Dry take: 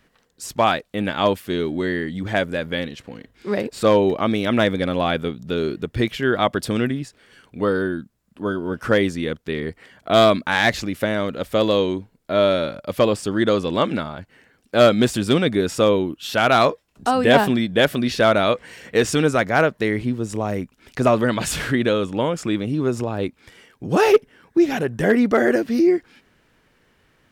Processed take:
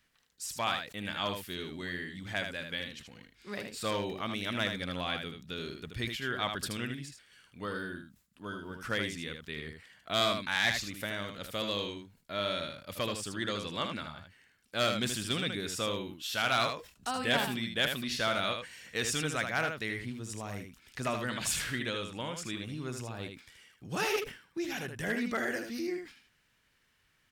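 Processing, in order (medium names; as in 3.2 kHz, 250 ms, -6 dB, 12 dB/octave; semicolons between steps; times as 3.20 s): amplifier tone stack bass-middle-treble 5-5-5; delay 78 ms -6.5 dB; decay stretcher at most 130 dB/s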